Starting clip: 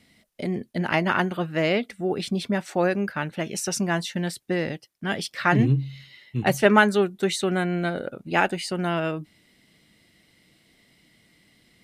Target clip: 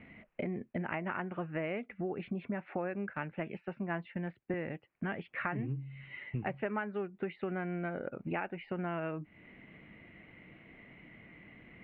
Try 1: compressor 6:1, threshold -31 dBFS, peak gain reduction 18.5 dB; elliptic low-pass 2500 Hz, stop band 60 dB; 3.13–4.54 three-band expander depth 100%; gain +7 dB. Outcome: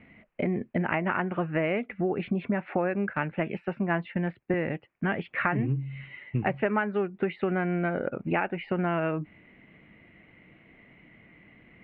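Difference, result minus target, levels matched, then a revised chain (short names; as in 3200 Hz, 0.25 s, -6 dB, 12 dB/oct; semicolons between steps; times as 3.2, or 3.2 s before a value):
compressor: peak gain reduction -9 dB
compressor 6:1, threshold -42 dBFS, peak gain reduction 27.5 dB; elliptic low-pass 2500 Hz, stop band 60 dB; 3.13–4.54 three-band expander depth 100%; gain +7 dB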